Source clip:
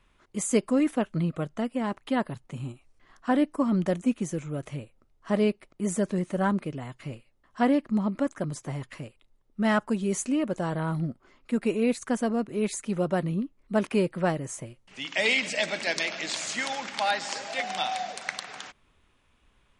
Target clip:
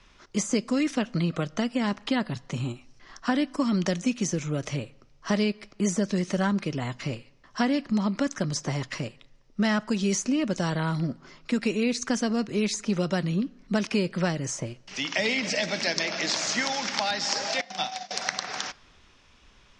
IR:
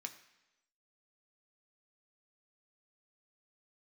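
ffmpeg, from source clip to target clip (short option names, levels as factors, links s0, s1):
-filter_complex "[0:a]acrossover=split=270|1700[s0][s1][s2];[s0]acompressor=threshold=0.0178:ratio=4[s3];[s1]acompressor=threshold=0.0126:ratio=4[s4];[s2]acompressor=threshold=0.00708:ratio=4[s5];[s3][s4][s5]amix=inputs=3:normalize=0,lowpass=f=5600:t=q:w=3.9,asettb=1/sr,asplit=3[s6][s7][s8];[s6]atrim=end=17.614[s9];[s7]atrim=start=17.61:end=18.11,asetpts=PTS-STARTPTS,afade=t=in:d=0.004:c=qsin,afade=t=out:st=0.496:d=0.004:c=qsin,agate=range=0.0562:threshold=0.0178:ratio=16:detection=peak[s10];[s8]atrim=start=18.106[s11];[s9][s10]acrossfade=d=0.004:c1=hsin:c2=qsin[s12];[s12][s11]acrossfade=d=0.004:c1=qsin:c2=hsin,asplit=2[s13][s14];[1:a]atrim=start_sample=2205,asetrate=33516,aresample=44100[s15];[s14][s15]afir=irnorm=-1:irlink=0,volume=0.299[s16];[s13][s16]amix=inputs=2:normalize=0,volume=2.11"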